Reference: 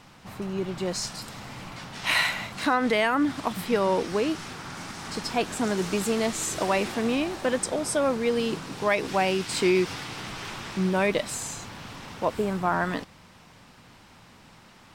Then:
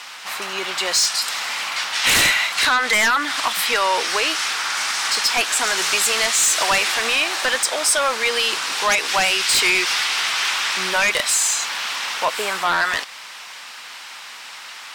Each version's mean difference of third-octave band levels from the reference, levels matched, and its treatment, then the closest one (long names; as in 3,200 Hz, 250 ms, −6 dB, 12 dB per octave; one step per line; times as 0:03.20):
11.0 dB: Bessel high-pass filter 1,800 Hz, order 2
high-shelf EQ 8,300 Hz −4.5 dB
in parallel at −0.5 dB: downward compressor, threshold −41 dBFS, peak gain reduction 17.5 dB
on the sum: sine wavefolder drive 11 dB, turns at −13.5 dBFS
level +1.5 dB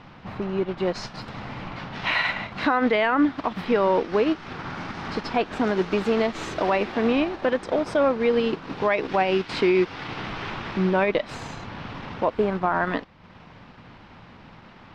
6.0 dB: dynamic equaliser 130 Hz, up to −7 dB, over −43 dBFS, Q 0.96
brickwall limiter −17.5 dBFS, peak gain reduction 5 dB
transient designer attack 0 dB, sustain −7 dB
high-frequency loss of the air 270 metres
level +7 dB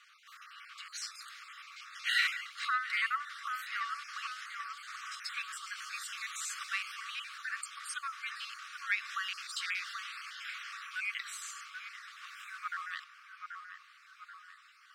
17.5 dB: time-frequency cells dropped at random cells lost 29%
linear-phase brick-wall high-pass 1,100 Hz
high-shelf EQ 5,900 Hz −9.5 dB
on a send: delay with a low-pass on its return 783 ms, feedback 50%, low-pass 1,600 Hz, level −5 dB
on the sum: level −3 dB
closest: second